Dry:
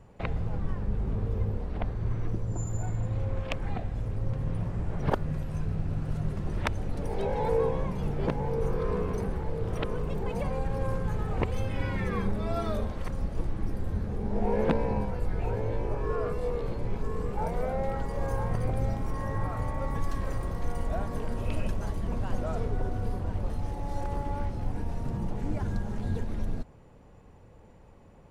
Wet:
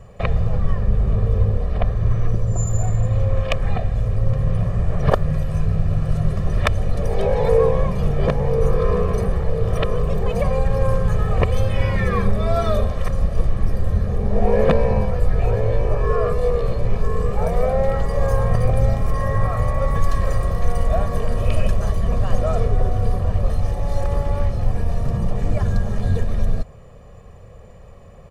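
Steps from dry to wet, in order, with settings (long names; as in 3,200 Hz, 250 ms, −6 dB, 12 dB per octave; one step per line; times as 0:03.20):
comb filter 1.7 ms, depth 65%
level +8.5 dB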